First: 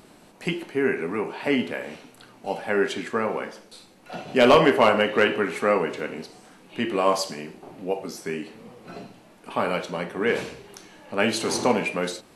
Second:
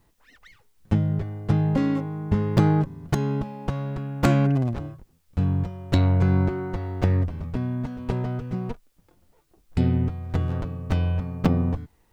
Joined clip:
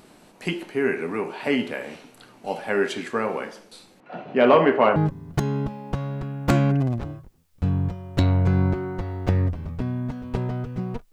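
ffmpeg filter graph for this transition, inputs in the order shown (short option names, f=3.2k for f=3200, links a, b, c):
-filter_complex "[0:a]asettb=1/sr,asplit=3[a][b][c];[a]atrim=end=4.004[d];[b]atrim=start=4:end=4.96,asetpts=PTS-STARTPTS,afade=t=in:d=0.004:c=qsin,afade=t=out:st=0.956:d=0.004:c=qsin,highpass=120,lowpass=2k[e];[c]atrim=start=4.956[f];[d][e]acrossfade=d=0.004:c1=hsin:c2=qsin[g];[g][f]acrossfade=d=0.004:c1=qsin:c2=hsin,apad=whole_dur=11.12,atrim=end=11.12,atrim=end=4.962[h];[1:a]atrim=start=2.708:end=8.87[i];[h][i]acrossfade=d=0.004:c1=hsin:c2=hsin"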